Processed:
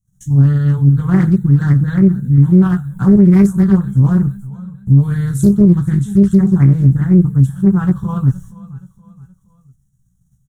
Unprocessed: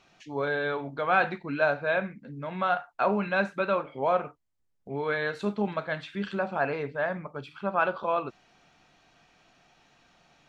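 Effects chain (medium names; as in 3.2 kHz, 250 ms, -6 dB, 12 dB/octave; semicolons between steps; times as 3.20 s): in parallel at -2 dB: level held to a coarse grid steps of 13 dB; on the sum: gate -54 dBFS, range -35 dB; inverse Chebyshev band-stop 300–5000 Hz, stop band 40 dB; doubling 16 ms -5 dB; on a send: feedback delay 472 ms, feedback 43%, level -19 dB; on the sum: loudness maximiser +34 dB; loudspeaker Doppler distortion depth 0.46 ms; trim -1 dB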